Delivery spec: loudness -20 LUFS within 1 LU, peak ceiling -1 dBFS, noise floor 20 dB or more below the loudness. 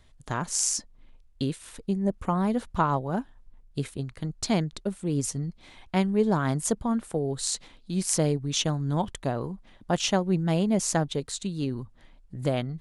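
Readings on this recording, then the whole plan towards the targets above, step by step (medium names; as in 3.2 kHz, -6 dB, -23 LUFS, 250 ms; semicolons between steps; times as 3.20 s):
loudness -28.0 LUFS; peak level -7.0 dBFS; loudness target -20.0 LUFS
-> trim +8 dB; peak limiter -1 dBFS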